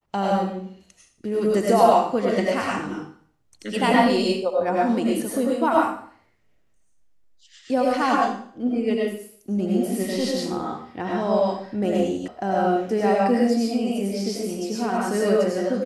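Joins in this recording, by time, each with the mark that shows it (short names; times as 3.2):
12.28 sound cut off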